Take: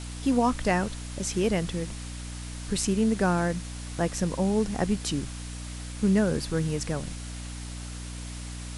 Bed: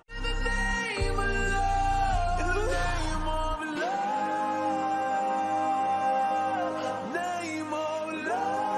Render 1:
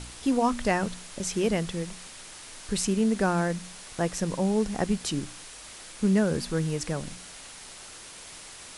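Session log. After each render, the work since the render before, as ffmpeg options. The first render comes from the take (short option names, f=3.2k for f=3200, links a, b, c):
-af "bandreject=f=60:t=h:w=4,bandreject=f=120:t=h:w=4,bandreject=f=180:t=h:w=4,bandreject=f=240:t=h:w=4,bandreject=f=300:t=h:w=4"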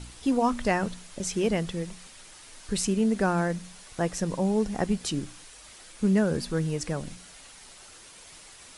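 -af "afftdn=nr=6:nf=-45"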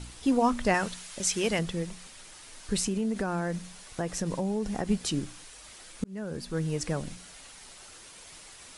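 -filter_complex "[0:a]asettb=1/sr,asplit=3[a][b][c];[a]atrim=end=0.744[d];[b]atrim=start=0.74:end=1.59,asetpts=PTS-STARTPTS,afade=t=in:d=0.004:c=qsin,afade=t=out:st=0.846:d=0.004:c=qsin,tiltshelf=f=770:g=-5.5[e];[c]atrim=start=1.586[f];[d][e]acrossfade=d=0.004:c1=hsin:c2=qsin[g];[g][f]acrossfade=d=0.004:c1=qsin:c2=hsin,asettb=1/sr,asplit=3[h][i][j];[h]atrim=end=2.794[k];[i]atrim=start=2.79:end=4.9,asetpts=PTS-STARTPTS,afade=t=in:d=0.004:c=qsin,afade=t=out:st=2.106:d=0.004:c=qsin,acompressor=threshold=-25dB:ratio=6:attack=3.2:release=140:knee=1:detection=peak[l];[j]atrim=start=4.896[m];[k][l]acrossfade=d=0.004:c1=hsin:c2=qsin[n];[n][m]acrossfade=d=0.004:c1=qsin:c2=hsin,asplit=2[o][p];[o]atrim=end=6.04,asetpts=PTS-STARTPTS,afade=t=out:st=6.036:d=0.004:c=hsin[q];[p]atrim=start=6.04,asetpts=PTS-STARTPTS,afade=t=in:d=0.78[r];[q][r]concat=n=2:v=0:a=1"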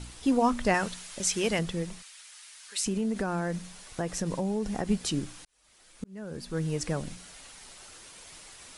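-filter_complex "[0:a]asplit=3[a][b][c];[a]afade=t=out:st=2.01:d=0.02[d];[b]highpass=1.5k,afade=t=in:st=2.01:d=0.02,afade=t=out:st=2.85:d=0.02[e];[c]afade=t=in:st=2.85:d=0.02[f];[d][e][f]amix=inputs=3:normalize=0,asplit=2[g][h];[g]atrim=end=5.45,asetpts=PTS-STARTPTS,afade=t=out:st=5.446:d=0.004:c=hsin[i];[h]atrim=start=5.45,asetpts=PTS-STARTPTS,afade=t=in:d=1.2[j];[i][j]concat=n=2:v=0:a=1"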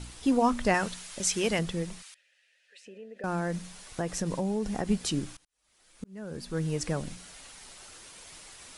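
-filter_complex "[0:a]asettb=1/sr,asplit=3[a][b][c];[a]atrim=end=2.144[d];[b]atrim=start=2.14:end=3.24,asetpts=PTS-STARTPTS,afade=t=in:d=0.004:c=qsin,afade=t=out:st=1.096:d=0.004:c=qsin,asplit=3[e][f][g];[e]bandpass=f=530:t=q:w=8,volume=0dB[h];[f]bandpass=f=1.84k:t=q:w=8,volume=-6dB[i];[g]bandpass=f=2.48k:t=q:w=8,volume=-9dB[j];[h][i][j]amix=inputs=3:normalize=0[k];[c]atrim=start=3.236[l];[d][k]acrossfade=d=0.004:c1=hsin:c2=qsin[m];[m][l]acrossfade=d=0.004:c1=qsin:c2=hsin,asplit=2[n][o];[n]atrim=end=5.37,asetpts=PTS-STARTPTS,afade=t=out:st=5.366:d=0.004:c=hsin:silence=0.0749894[p];[o]atrim=start=5.37,asetpts=PTS-STARTPTS,afade=t=in:d=0.88:silence=0.0749894[q];[p][q]concat=n=2:v=0:a=1"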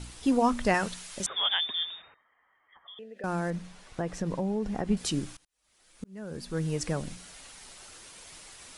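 -filter_complex "[0:a]asettb=1/sr,asplit=3[a][b][c];[a]atrim=end=1.264[d];[b]atrim=start=1.26:end=2.99,asetpts=PTS-STARTPTS,afade=t=in:d=0.004:c=qsin,afade=t=out:st=1.726:d=0.004:c=qsin,lowpass=f=3.1k:t=q:w=0.5098,lowpass=f=3.1k:t=q:w=0.6013,lowpass=f=3.1k:t=q:w=0.9,lowpass=f=3.1k:t=q:w=2.563,afreqshift=-3700[e];[c]atrim=start=2.986[f];[d][e]acrossfade=d=0.004:c1=hsin:c2=qsin[g];[g][f]acrossfade=d=0.004:c1=qsin:c2=hsin,asettb=1/sr,asplit=3[h][i][j];[h]atrim=end=3.504[k];[i]atrim=start=3.5:end=4.97,asetpts=PTS-STARTPTS,afade=t=in:d=0.004:c=qsin,afade=t=out:st=1.466:d=0.004:c=qsin,lowpass=f=2.3k:p=1[l];[j]atrim=start=4.966[m];[k][l]acrossfade=d=0.004:c1=hsin:c2=qsin[n];[n][m]acrossfade=d=0.004:c1=qsin:c2=hsin"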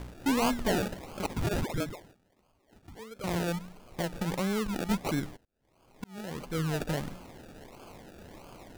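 -af "acrusher=samples=33:mix=1:aa=0.000001:lfo=1:lforange=19.8:lforate=1.5,asoftclip=type=hard:threshold=-23dB"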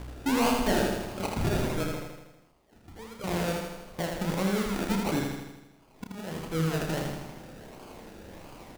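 -filter_complex "[0:a]asplit=2[a][b];[b]adelay=31,volume=-7dB[c];[a][c]amix=inputs=2:normalize=0,aecho=1:1:80|160|240|320|400|480|560|640:0.631|0.372|0.22|0.13|0.0765|0.0451|0.0266|0.0157"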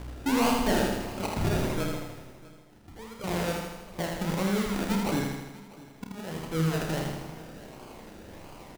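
-filter_complex "[0:a]asplit=2[a][b];[b]adelay=50,volume=-10.5dB[c];[a][c]amix=inputs=2:normalize=0,aecho=1:1:647:0.0944"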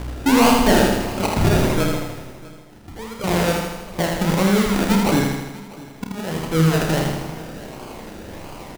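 -af "volume=10.5dB"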